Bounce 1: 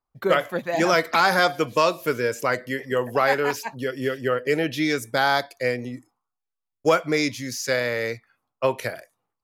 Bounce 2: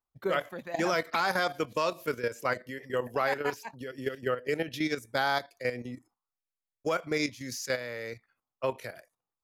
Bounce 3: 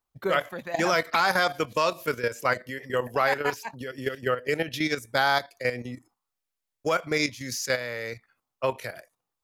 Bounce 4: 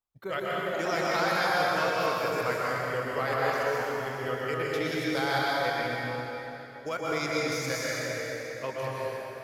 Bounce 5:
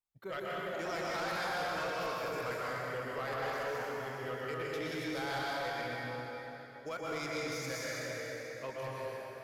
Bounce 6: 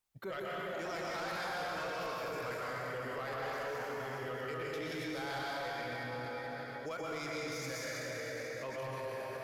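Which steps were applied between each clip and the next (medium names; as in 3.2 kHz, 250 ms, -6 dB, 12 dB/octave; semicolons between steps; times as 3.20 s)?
level held to a coarse grid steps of 11 dB; trim -5 dB
dynamic bell 310 Hz, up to -4 dB, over -44 dBFS, Q 0.78; trim +6 dB
plate-style reverb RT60 3.8 s, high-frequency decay 0.75×, pre-delay 110 ms, DRR -6 dB; trim -9 dB
saturation -25 dBFS, distortion -14 dB; trim -6 dB
peak limiter -41.5 dBFS, peak gain reduction 10.5 dB; trim +7.5 dB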